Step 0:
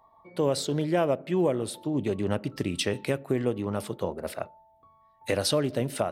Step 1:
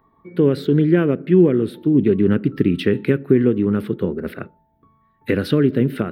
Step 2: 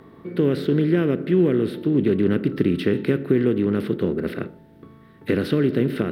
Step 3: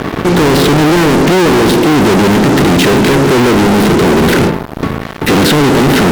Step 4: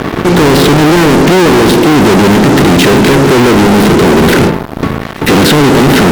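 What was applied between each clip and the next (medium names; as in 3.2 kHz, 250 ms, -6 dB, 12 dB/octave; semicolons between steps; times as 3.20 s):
FFT filter 100 Hz 0 dB, 190 Hz +7 dB, 430 Hz +4 dB, 620 Hz -15 dB, 950 Hz -13 dB, 1.5 kHz +2 dB, 2.6 kHz -5 dB, 3.8 kHz -9 dB, 7.1 kHz -29 dB, 15 kHz -4 dB; trim +8 dB
spectral levelling over time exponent 0.6; trim -6.5 dB
fuzz box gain 45 dB, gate -47 dBFS; trim +6 dB
pre-echo 100 ms -22 dB; trim +2.5 dB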